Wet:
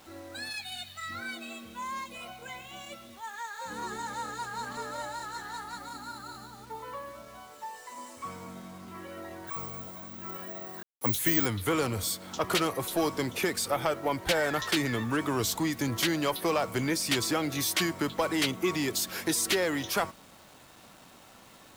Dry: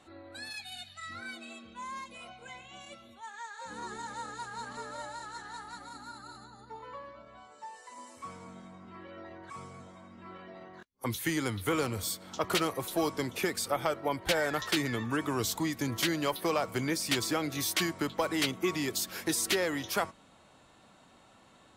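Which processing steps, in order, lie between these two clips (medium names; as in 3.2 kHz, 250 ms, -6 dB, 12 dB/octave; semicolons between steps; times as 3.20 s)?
in parallel at -3 dB: saturation -34.5 dBFS, distortion -6 dB; on the sum: bit crusher 9-bit; 9.47–11.46 s: careless resampling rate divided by 2×, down none, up zero stuff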